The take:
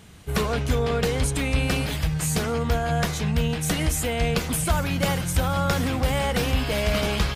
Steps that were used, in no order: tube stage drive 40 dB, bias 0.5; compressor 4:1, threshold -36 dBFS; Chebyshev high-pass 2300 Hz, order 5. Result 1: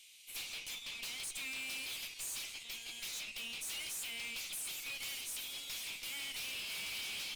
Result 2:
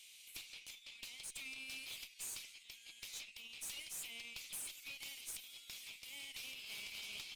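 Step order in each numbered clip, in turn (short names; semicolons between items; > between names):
Chebyshev high-pass > tube stage > compressor; compressor > Chebyshev high-pass > tube stage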